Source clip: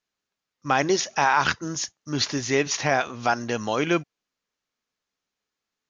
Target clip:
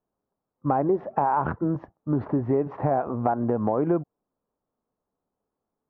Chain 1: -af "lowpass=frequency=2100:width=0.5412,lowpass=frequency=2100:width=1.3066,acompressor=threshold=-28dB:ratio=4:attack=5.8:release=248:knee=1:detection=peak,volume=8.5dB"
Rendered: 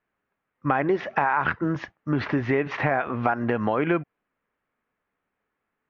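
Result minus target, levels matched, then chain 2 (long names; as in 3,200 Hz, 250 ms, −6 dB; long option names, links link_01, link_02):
2,000 Hz band +14.5 dB
-af "lowpass=frequency=940:width=0.5412,lowpass=frequency=940:width=1.3066,acompressor=threshold=-28dB:ratio=4:attack=5.8:release=248:knee=1:detection=peak,volume=8.5dB"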